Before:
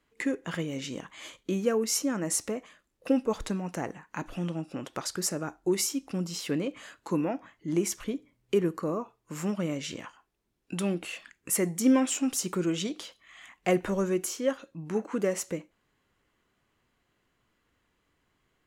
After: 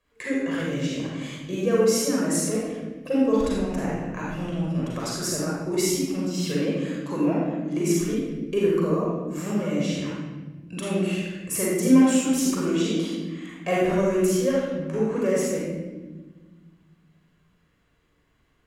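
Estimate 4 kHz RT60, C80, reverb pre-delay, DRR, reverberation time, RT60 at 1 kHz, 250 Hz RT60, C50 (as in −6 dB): 0.85 s, 1.0 dB, 37 ms, −5.5 dB, 1.3 s, 1.0 s, 2.4 s, −3.0 dB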